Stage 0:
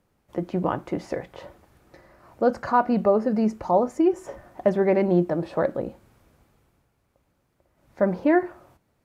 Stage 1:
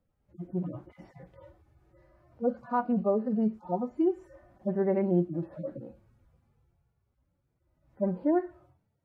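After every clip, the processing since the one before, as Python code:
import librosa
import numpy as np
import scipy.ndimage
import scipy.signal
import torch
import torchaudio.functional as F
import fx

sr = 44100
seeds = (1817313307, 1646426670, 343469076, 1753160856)

y = fx.hpss_only(x, sr, part='harmonic')
y = fx.tilt_eq(y, sr, slope=-2.0)
y = y * 10.0 ** (-9.0 / 20.0)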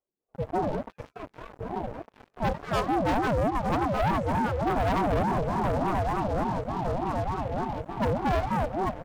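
y = fx.reverse_delay_fb(x, sr, ms=604, feedback_pct=74, wet_db=-7)
y = fx.leveller(y, sr, passes=5)
y = fx.ring_lfo(y, sr, carrier_hz=430.0, swing_pct=35, hz=3.4)
y = y * 10.0 ** (-5.0 / 20.0)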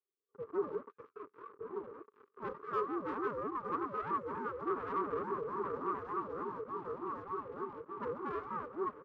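y = fx.double_bandpass(x, sr, hz=700.0, octaves=1.5)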